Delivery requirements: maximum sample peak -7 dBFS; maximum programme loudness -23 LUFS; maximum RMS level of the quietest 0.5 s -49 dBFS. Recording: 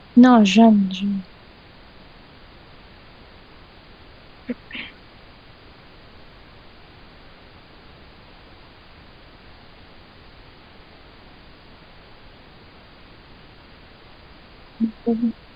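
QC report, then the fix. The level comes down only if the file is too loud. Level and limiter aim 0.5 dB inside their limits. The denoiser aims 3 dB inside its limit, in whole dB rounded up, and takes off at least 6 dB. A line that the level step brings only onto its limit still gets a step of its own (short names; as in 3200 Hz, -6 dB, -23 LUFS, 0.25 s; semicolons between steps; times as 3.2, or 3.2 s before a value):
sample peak -3.0 dBFS: fail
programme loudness -18.0 LUFS: fail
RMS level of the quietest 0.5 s -46 dBFS: fail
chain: gain -5.5 dB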